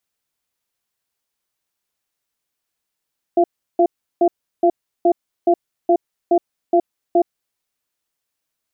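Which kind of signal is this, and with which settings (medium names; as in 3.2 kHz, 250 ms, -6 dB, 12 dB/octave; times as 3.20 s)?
cadence 349 Hz, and 685 Hz, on 0.07 s, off 0.35 s, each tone -13 dBFS 4.08 s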